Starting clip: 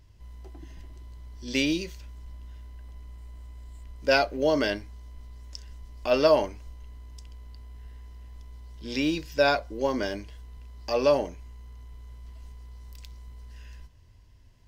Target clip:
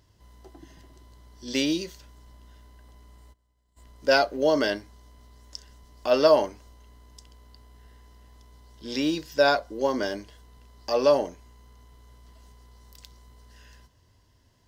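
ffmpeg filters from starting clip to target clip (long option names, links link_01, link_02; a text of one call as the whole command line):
ffmpeg -i in.wav -filter_complex "[0:a]asplit=3[link_01][link_02][link_03];[link_01]afade=type=out:start_time=3.32:duration=0.02[link_04];[link_02]agate=range=-33dB:threshold=-30dB:ratio=3:detection=peak,afade=type=in:start_time=3.32:duration=0.02,afade=type=out:start_time=3.76:duration=0.02[link_05];[link_03]afade=type=in:start_time=3.76:duration=0.02[link_06];[link_04][link_05][link_06]amix=inputs=3:normalize=0,highpass=frequency=210:poles=1,equalizer=frequency=2400:width_type=o:width=0.4:gain=-8,volume=2.5dB" out.wav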